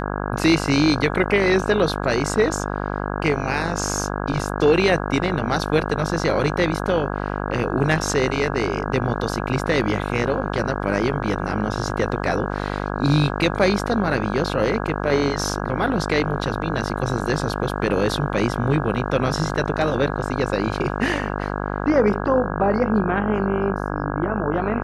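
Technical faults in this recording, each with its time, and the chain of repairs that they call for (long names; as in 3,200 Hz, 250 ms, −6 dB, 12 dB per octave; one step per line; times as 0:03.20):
mains buzz 50 Hz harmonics 33 −26 dBFS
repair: hum removal 50 Hz, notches 33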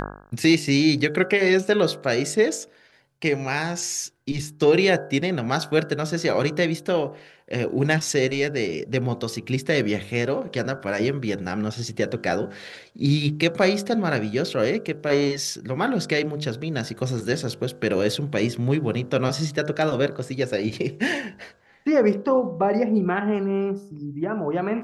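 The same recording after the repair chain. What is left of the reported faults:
none of them is left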